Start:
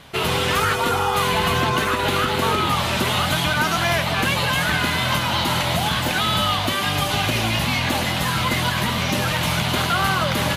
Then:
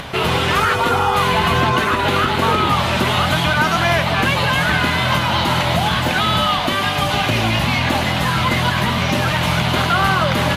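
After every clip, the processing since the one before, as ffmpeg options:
-af "highshelf=f=4800:g=-9.5,bandreject=f=50:t=h:w=6,bandreject=f=100:t=h:w=6,bandreject=f=150:t=h:w=6,bandreject=f=200:t=h:w=6,bandreject=f=250:t=h:w=6,bandreject=f=300:t=h:w=6,bandreject=f=350:t=h:w=6,bandreject=f=400:t=h:w=6,bandreject=f=450:t=h:w=6,bandreject=f=500:t=h:w=6,acompressor=mode=upward:threshold=0.0501:ratio=2.5,volume=1.78"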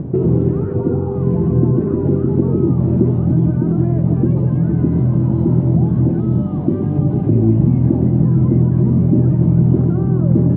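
-af "alimiter=limit=0.266:level=0:latency=1:release=52,lowpass=f=340:t=q:w=4.1,equalizer=f=140:w=1:g=13,volume=0.891"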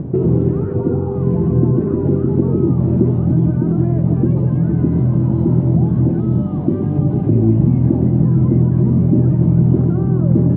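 -af anull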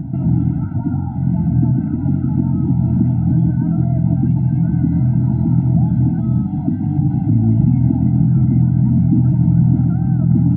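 -af "afftfilt=real='re*eq(mod(floor(b*sr/1024/320),2),0)':imag='im*eq(mod(floor(b*sr/1024/320),2),0)':win_size=1024:overlap=0.75"

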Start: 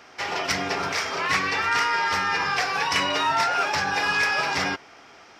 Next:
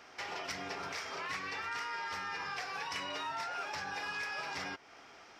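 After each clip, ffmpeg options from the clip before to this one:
-af "lowshelf=f=170:g=-6,acompressor=threshold=0.0178:ratio=2.5,lowshelf=f=67:g=9,volume=0.473"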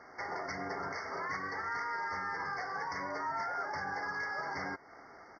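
-af "adynamicsmooth=sensitivity=1.5:basefreq=3400,aresample=16000,volume=50.1,asoftclip=hard,volume=0.02,aresample=44100,afftfilt=real='re*eq(mod(floor(b*sr/1024/2200),2),0)':imag='im*eq(mod(floor(b*sr/1024/2200),2),0)':win_size=1024:overlap=0.75,volume=1.58"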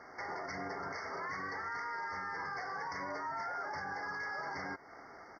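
-af "alimiter=level_in=2.99:limit=0.0631:level=0:latency=1:release=56,volume=0.335,volume=1.12"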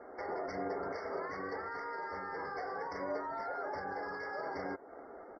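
-af "adynamicsmooth=sensitivity=4.5:basefreq=3300,equalizer=f=125:t=o:w=1:g=-11,equalizer=f=500:t=o:w=1:g=6,equalizer=f=1000:t=o:w=1:g=-6,equalizer=f=2000:t=o:w=1:g=-8,afftdn=nr=19:nf=-64,volume=1.78"

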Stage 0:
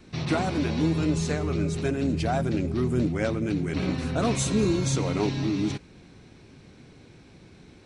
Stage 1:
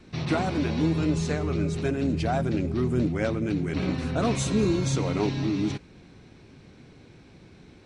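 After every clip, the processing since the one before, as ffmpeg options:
-af "highshelf=f=8400:g=-8.5"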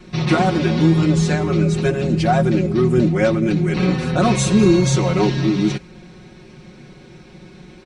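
-af "aecho=1:1:5.5:0.93,volume=2.11"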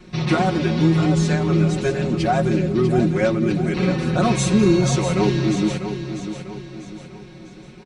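-af "aecho=1:1:647|1294|1941|2588|3235:0.335|0.147|0.0648|0.0285|0.0126,volume=0.75"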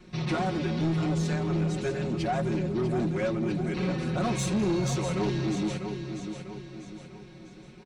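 -af "asoftclip=type=tanh:threshold=0.188,volume=0.447"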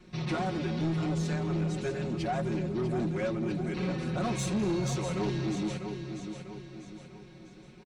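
-af "aecho=1:1:254:0.0708,volume=0.708"

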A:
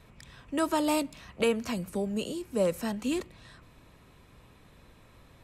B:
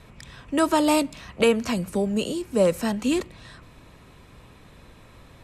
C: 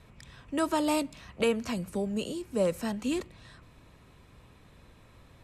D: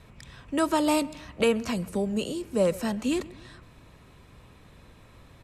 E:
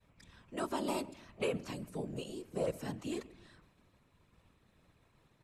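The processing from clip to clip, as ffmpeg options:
-af "lowpass=12000,volume=2.24"
-af "equalizer=f=84:t=o:w=1.5:g=2.5,volume=0.422"
-filter_complex "[0:a]asplit=2[s0][s1];[s1]adelay=133,lowpass=f=2100:p=1,volume=0.1,asplit=2[s2][s3];[s3]adelay=133,lowpass=f=2100:p=1,volume=0.46,asplit=2[s4][s5];[s5]adelay=133,lowpass=f=2100:p=1,volume=0.46[s6];[s0][s2][s4][s6]amix=inputs=4:normalize=0,volume=1.5"
-af "bandreject=f=46.34:t=h:w=4,bandreject=f=92.68:t=h:w=4,bandreject=f=139.02:t=h:w=4,bandreject=f=185.36:t=h:w=4,bandreject=f=231.7:t=h:w=4,bandreject=f=278.04:t=h:w=4,agate=range=0.0224:threshold=0.00398:ratio=3:detection=peak,afftfilt=real='hypot(re,im)*cos(2*PI*random(0))':imag='hypot(re,im)*sin(2*PI*random(1))':win_size=512:overlap=0.75,volume=0.501"

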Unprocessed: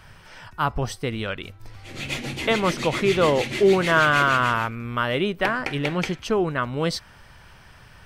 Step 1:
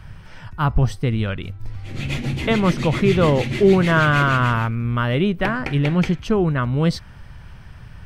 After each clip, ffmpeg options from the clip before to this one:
-af "bass=f=250:g=12,treble=f=4000:g=-4"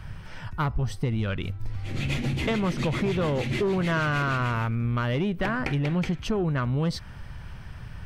-af "asoftclip=type=tanh:threshold=0.237,acompressor=threshold=0.0708:ratio=6"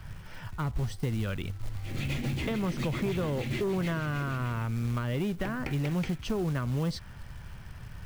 -filter_complex "[0:a]acrusher=bits=5:mode=log:mix=0:aa=0.000001,acrossover=split=430[s0][s1];[s1]acompressor=threshold=0.0316:ratio=6[s2];[s0][s2]amix=inputs=2:normalize=0,volume=0.631"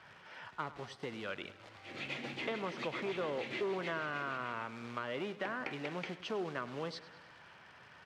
-af "highpass=430,lowpass=4000,aecho=1:1:102|204|306|408|510|612:0.15|0.0898|0.0539|0.0323|0.0194|0.0116,volume=0.841"

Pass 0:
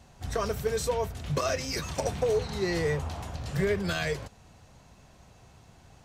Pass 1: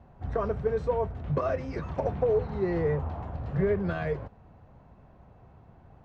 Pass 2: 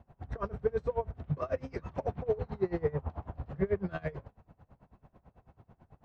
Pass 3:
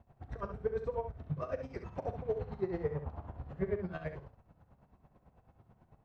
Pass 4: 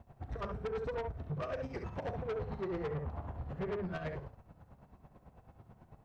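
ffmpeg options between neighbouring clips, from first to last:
-af "lowpass=1200,volume=1.19"
-af "aeval=exprs='val(0)*pow(10,-24*(0.5-0.5*cos(2*PI*9.1*n/s))/20)':c=same"
-af "aecho=1:1:39|68:0.178|0.376,volume=0.596"
-af "asoftclip=type=tanh:threshold=0.0112,volume=1.88"

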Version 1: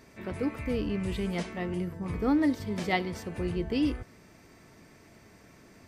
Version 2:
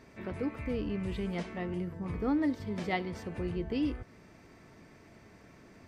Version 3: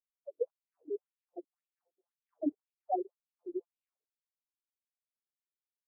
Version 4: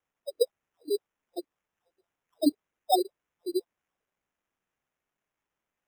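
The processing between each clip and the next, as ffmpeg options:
-filter_complex "[0:a]lowpass=f=3600:p=1,asplit=2[s0][s1];[s1]acompressor=threshold=0.0126:ratio=6,volume=0.841[s2];[s0][s2]amix=inputs=2:normalize=0,volume=0.531"
-af "afftfilt=real='re*gte(hypot(re,im),0.1)':imag='im*gte(hypot(re,im),0.1)':win_size=1024:overlap=0.75,afftfilt=real='re*between(b*sr/1024,420*pow(3700/420,0.5+0.5*sin(2*PI*1.9*pts/sr))/1.41,420*pow(3700/420,0.5+0.5*sin(2*PI*1.9*pts/sr))*1.41)':imag='im*between(b*sr/1024,420*pow(3700/420,0.5+0.5*sin(2*PI*1.9*pts/sr))/1.41,420*pow(3700/420,0.5+0.5*sin(2*PI*1.9*pts/sr))*1.41)':win_size=1024:overlap=0.75,volume=2"
-af "acrusher=samples=10:mix=1:aa=0.000001,volume=2.66"

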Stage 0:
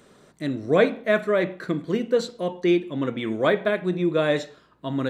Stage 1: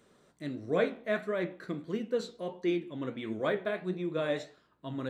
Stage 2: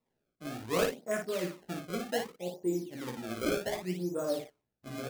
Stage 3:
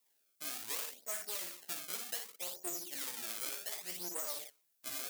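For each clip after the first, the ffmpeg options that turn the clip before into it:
-af "flanger=delay=8.3:depth=9.3:regen=64:speed=1.5:shape=triangular,volume=0.501"
-af "afwtdn=0.0158,acrusher=samples=27:mix=1:aa=0.000001:lfo=1:lforange=43.2:lforate=0.66,aecho=1:1:17|56:0.531|0.562,volume=0.668"
-af "aeval=exprs='clip(val(0),-1,0.00944)':c=same,aderivative,acompressor=threshold=0.00355:ratio=10,volume=5.96"

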